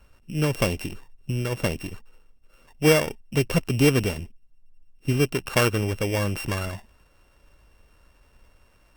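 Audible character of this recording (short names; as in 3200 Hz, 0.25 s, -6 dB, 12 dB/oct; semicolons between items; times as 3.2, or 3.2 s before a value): a buzz of ramps at a fixed pitch in blocks of 16 samples; Opus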